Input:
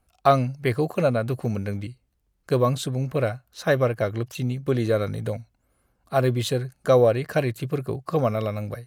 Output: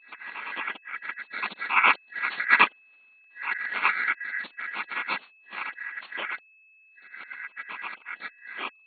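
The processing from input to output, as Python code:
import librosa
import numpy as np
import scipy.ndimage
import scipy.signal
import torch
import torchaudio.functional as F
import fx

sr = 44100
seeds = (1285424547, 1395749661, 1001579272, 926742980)

p1 = x[::-1].copy()
p2 = fx.doppler_pass(p1, sr, speed_mps=11, closest_m=8.0, pass_at_s=3.09)
p3 = fx.level_steps(p2, sr, step_db=22)
p4 = p2 + (p3 * 10.0 ** (2.0 / 20.0))
p5 = fx.noise_vocoder(p4, sr, seeds[0], bands=8)
p6 = p5 * np.sin(2.0 * np.pi * 1800.0 * np.arange(len(p5)) / sr)
p7 = p6 + 10.0 ** (-56.0 / 20.0) * np.sin(2.0 * np.pi * 2600.0 * np.arange(len(p6)) / sr)
p8 = fx.brickwall_bandpass(p7, sr, low_hz=170.0, high_hz=4400.0)
y = p8 * 10.0 ** (1.0 / 20.0)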